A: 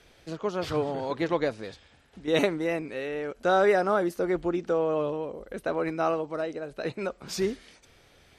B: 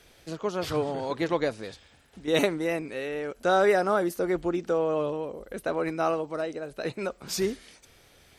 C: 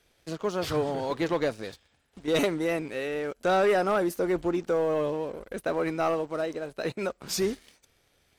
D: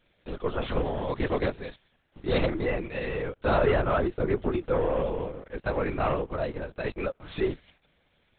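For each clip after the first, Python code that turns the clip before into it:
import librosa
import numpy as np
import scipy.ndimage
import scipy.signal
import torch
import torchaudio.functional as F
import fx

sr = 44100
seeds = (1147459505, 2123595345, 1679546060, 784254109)

y1 = fx.high_shelf(x, sr, hz=8300.0, db=11.5)
y2 = fx.leveller(y1, sr, passes=2)
y2 = y2 * 10.0 ** (-6.5 / 20.0)
y3 = fx.lpc_vocoder(y2, sr, seeds[0], excitation='whisper', order=10)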